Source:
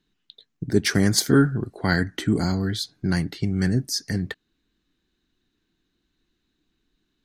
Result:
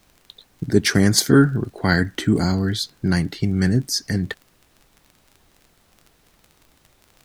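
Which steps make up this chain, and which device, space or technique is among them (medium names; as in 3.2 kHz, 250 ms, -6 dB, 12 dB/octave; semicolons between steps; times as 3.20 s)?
vinyl LP (crackle 29 per s -38 dBFS; pink noise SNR 37 dB); trim +3.5 dB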